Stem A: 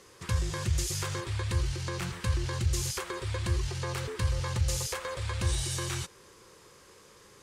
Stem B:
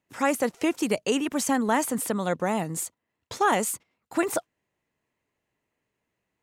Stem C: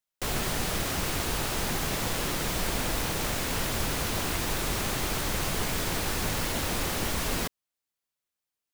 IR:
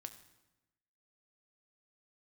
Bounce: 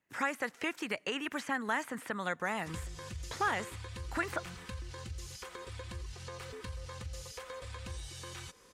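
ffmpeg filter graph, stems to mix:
-filter_complex "[0:a]adelay=2450,volume=0.531[s0];[1:a]equalizer=f=1700:t=o:w=0.91:g=7.5,acrossover=split=960|3200[s1][s2][s3];[s1]acompressor=threshold=0.02:ratio=4[s4];[s2]acompressor=threshold=0.0447:ratio=4[s5];[s3]acompressor=threshold=0.01:ratio=4[s6];[s4][s5][s6]amix=inputs=3:normalize=0,volume=0.531,asplit=2[s7][s8];[s8]volume=0.2[s9];[s0]aecho=1:1:4:0.49,acompressor=threshold=0.00708:ratio=2.5,volume=1[s10];[3:a]atrim=start_sample=2205[s11];[s9][s11]afir=irnorm=-1:irlink=0[s12];[s7][s10][s12]amix=inputs=3:normalize=0,acrossover=split=5100[s13][s14];[s14]acompressor=threshold=0.00282:ratio=4:attack=1:release=60[s15];[s13][s15]amix=inputs=2:normalize=0"

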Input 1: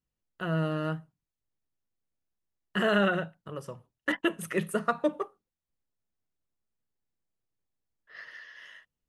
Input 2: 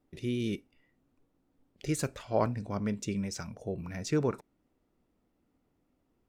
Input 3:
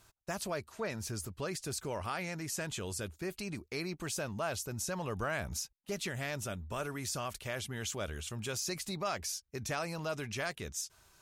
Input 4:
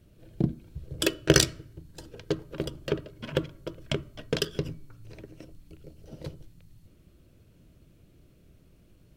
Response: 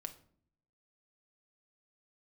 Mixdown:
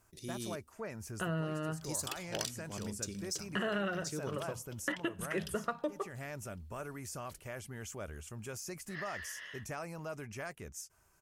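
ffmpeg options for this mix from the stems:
-filter_complex "[0:a]adelay=800,volume=1.19[s0];[1:a]aexciter=amount=4.6:drive=7:freq=3800,volume=0.299[s1];[2:a]equalizer=f=3800:t=o:w=0.71:g=-15,volume=0.596[s2];[3:a]tiltshelf=f=1300:g=-8.5,adelay=1050,volume=0.15,asplit=2[s3][s4];[s4]volume=0.0944,aecho=0:1:369|738|1107|1476|1845:1|0.35|0.122|0.0429|0.015[s5];[s0][s1][s2][s3][s5]amix=inputs=5:normalize=0,acompressor=threshold=0.02:ratio=4"

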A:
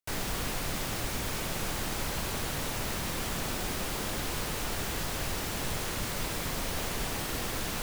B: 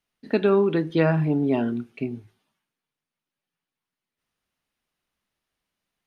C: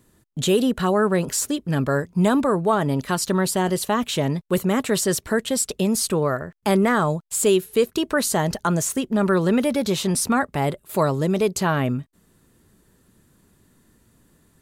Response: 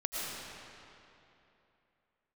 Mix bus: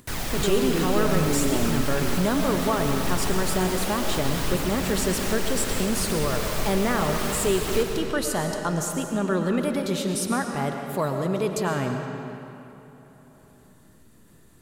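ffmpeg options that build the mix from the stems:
-filter_complex "[0:a]aphaser=in_gain=1:out_gain=1:delay=4.5:decay=0.39:speed=0.65:type=triangular,volume=0.794,asplit=2[s0][s1];[s1]volume=0.708[s2];[1:a]alimiter=limit=0.112:level=0:latency=1,volume=0.944[s3];[2:a]volume=0.335,asplit=3[s4][s5][s6];[s5]volume=0.596[s7];[s6]apad=whole_len=345217[s8];[s0][s8]sidechaincompress=threshold=0.0316:ratio=8:attack=16:release=276[s9];[3:a]atrim=start_sample=2205[s10];[s2][s7]amix=inputs=2:normalize=0[s11];[s11][s10]afir=irnorm=-1:irlink=0[s12];[s9][s3][s4][s12]amix=inputs=4:normalize=0,acompressor=mode=upward:threshold=0.00631:ratio=2.5"

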